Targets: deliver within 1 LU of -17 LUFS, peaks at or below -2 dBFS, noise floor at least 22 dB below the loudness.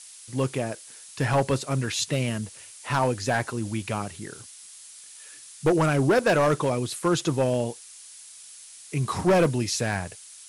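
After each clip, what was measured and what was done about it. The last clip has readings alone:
clipped 1.4%; flat tops at -15.5 dBFS; noise floor -46 dBFS; noise floor target -48 dBFS; loudness -25.5 LUFS; peak -15.5 dBFS; loudness target -17.0 LUFS
-> clip repair -15.5 dBFS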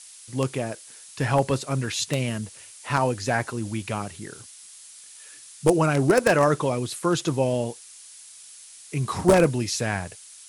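clipped 0.0%; noise floor -46 dBFS; noise floor target -47 dBFS
-> denoiser 6 dB, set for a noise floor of -46 dBFS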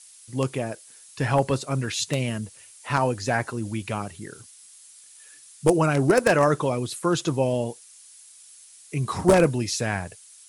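noise floor -50 dBFS; loudness -24.5 LUFS; peak -6.5 dBFS; loudness target -17.0 LUFS
-> gain +7.5 dB; limiter -2 dBFS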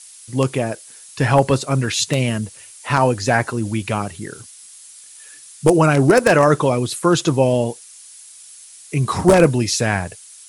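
loudness -17.5 LUFS; peak -2.0 dBFS; noise floor -43 dBFS

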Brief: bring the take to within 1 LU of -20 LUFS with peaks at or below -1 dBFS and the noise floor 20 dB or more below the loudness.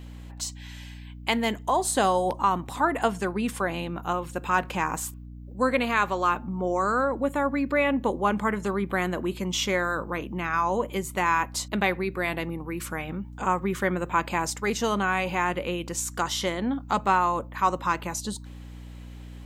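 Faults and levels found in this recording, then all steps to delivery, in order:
hum 60 Hz; harmonics up to 300 Hz; hum level -39 dBFS; loudness -26.5 LUFS; peak -8.5 dBFS; loudness target -20.0 LUFS
-> notches 60/120/180/240/300 Hz; gain +6.5 dB

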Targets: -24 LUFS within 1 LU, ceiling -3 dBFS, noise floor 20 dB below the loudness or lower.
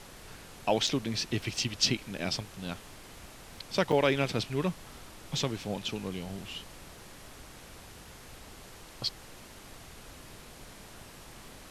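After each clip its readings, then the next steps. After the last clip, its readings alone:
dropouts 2; longest dropout 4.8 ms; noise floor -50 dBFS; noise floor target -52 dBFS; loudness -31.5 LUFS; peak -12.5 dBFS; loudness target -24.0 LUFS
-> interpolate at 0.87/3.92, 4.8 ms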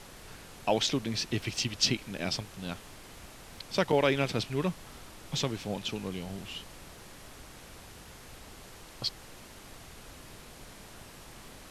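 dropouts 0; noise floor -50 dBFS; noise floor target -52 dBFS
-> noise print and reduce 6 dB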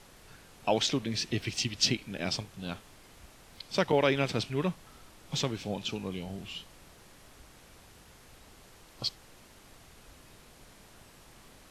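noise floor -56 dBFS; loudness -31.5 LUFS; peak -12.5 dBFS; loudness target -24.0 LUFS
-> gain +7.5 dB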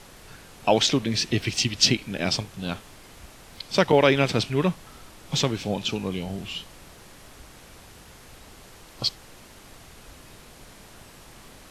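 loudness -24.0 LUFS; peak -5.0 dBFS; noise floor -49 dBFS

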